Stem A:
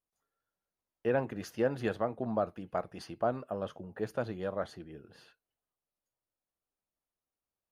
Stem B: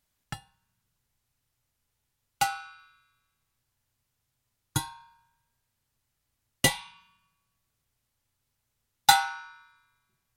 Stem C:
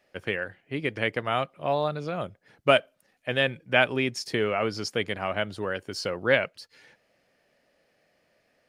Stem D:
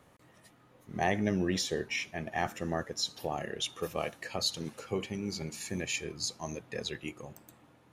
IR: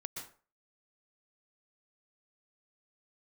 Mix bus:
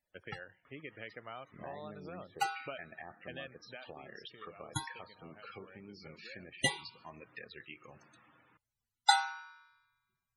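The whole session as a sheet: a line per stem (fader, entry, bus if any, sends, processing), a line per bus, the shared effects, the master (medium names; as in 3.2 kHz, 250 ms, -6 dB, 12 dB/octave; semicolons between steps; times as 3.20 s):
mute
-5.5 dB, 0.00 s, no send, none
3.59 s -10 dB -> 3.97 s -20.5 dB, 0.00 s, no send, gate -57 dBFS, range -13 dB; compression 4:1, threshold -32 dBFS, peak gain reduction 15 dB
-6.0 dB, 0.65 s, send -14.5 dB, low-pass that closes with the level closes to 850 Hz, closed at -30.5 dBFS; high-order bell 2.5 kHz +9 dB 2.6 oct; compression 4:1, threshold -40 dBFS, peak gain reduction 13 dB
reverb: on, RT60 0.40 s, pre-delay 113 ms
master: bass shelf 380 Hz -5 dB; loudest bins only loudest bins 64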